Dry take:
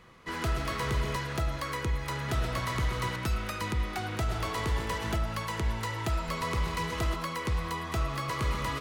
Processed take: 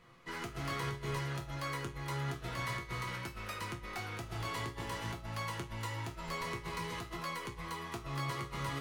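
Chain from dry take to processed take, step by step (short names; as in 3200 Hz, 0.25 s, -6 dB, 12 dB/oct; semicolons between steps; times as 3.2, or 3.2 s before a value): negative-ratio compressor -31 dBFS, ratio -0.5; resonator bank A#2 minor, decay 0.26 s; gain +6 dB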